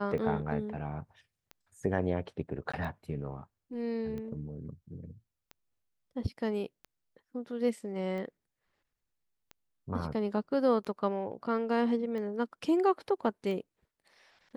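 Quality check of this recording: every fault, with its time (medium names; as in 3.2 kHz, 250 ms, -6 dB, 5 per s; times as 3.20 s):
tick 45 rpm -30 dBFS
2.72–2.73 s: dropout 15 ms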